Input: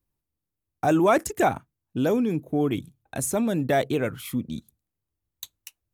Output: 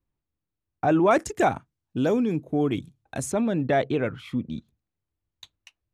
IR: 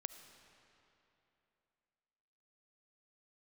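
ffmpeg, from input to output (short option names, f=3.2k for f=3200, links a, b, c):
-af "asetnsamples=n=441:p=0,asendcmd='1.11 lowpass f 7300;3.32 lowpass f 3400',lowpass=3k"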